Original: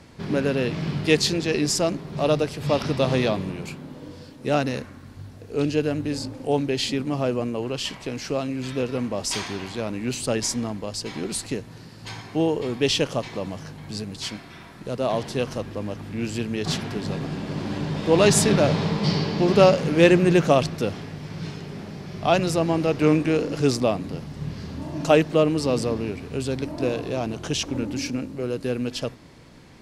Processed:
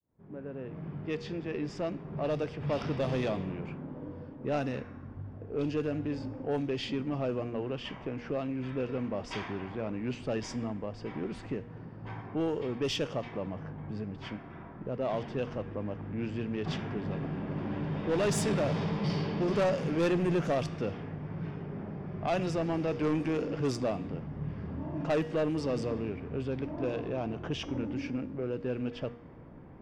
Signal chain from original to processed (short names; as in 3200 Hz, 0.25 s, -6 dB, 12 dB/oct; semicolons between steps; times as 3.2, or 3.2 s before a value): opening faded in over 2.84 s; low-pass opened by the level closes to 1000 Hz, open at -15 dBFS; high shelf 5500 Hz -8 dB; notch 4100 Hz, Q 6.8; de-hum 237.9 Hz, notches 38; in parallel at +2.5 dB: compressor, threshold -37 dBFS, peak gain reduction 24.5 dB; on the sum: soft clip -15 dBFS, distortion -12 dB; gain -8 dB